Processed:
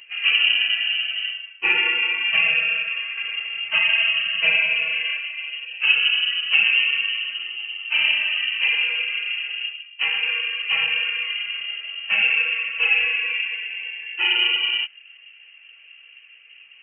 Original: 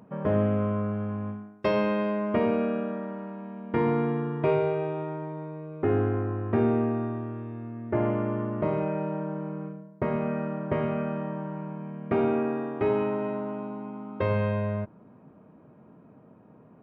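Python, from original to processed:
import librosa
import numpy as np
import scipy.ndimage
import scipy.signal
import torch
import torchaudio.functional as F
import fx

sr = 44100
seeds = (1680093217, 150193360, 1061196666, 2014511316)

y = fx.phase_scramble(x, sr, seeds[0], window_ms=50)
y = fx.freq_invert(y, sr, carrier_hz=3000)
y = fx.band_squash(y, sr, depth_pct=40, at=(3.17, 5.2))
y = F.gain(torch.from_numpy(y), 5.5).numpy()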